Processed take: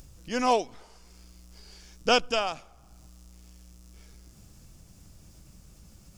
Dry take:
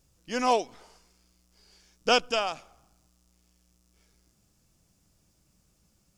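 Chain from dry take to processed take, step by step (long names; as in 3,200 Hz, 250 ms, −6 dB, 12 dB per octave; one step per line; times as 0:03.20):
low-shelf EQ 130 Hz +9 dB
upward compression, threshold −40 dBFS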